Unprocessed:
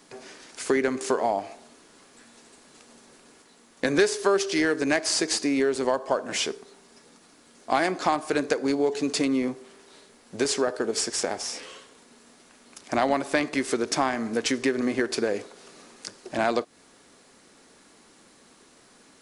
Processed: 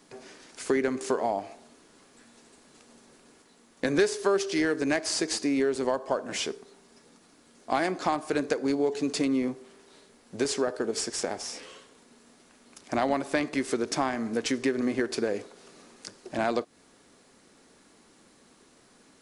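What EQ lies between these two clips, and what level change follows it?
bass shelf 450 Hz +4 dB; -4.5 dB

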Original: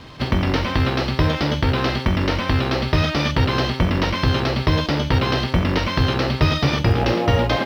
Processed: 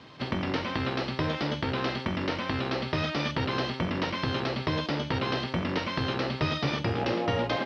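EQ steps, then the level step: band-pass 140–5800 Hz; -8.0 dB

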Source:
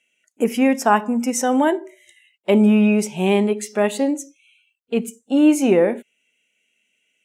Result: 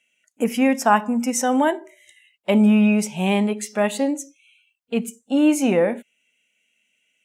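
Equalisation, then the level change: peaking EQ 380 Hz -9 dB 0.44 oct; 0.0 dB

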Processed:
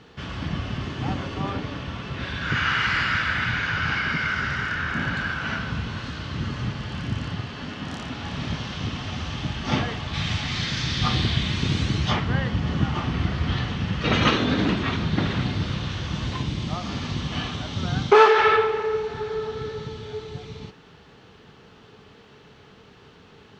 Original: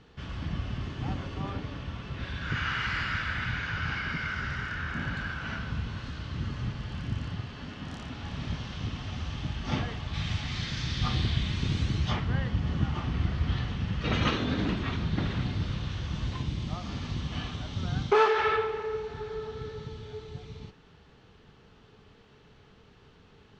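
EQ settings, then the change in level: high-pass 140 Hz 6 dB/octave; +8.5 dB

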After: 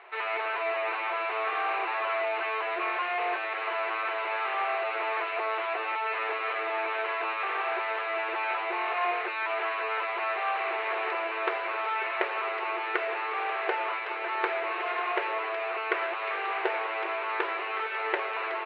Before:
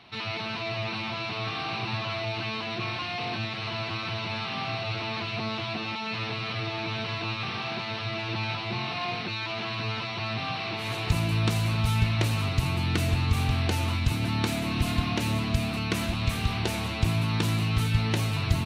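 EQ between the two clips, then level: brick-wall FIR high-pass 350 Hz; resonant low-pass 1.9 kHz, resonance Q 1.8; distance through air 360 m; +5.0 dB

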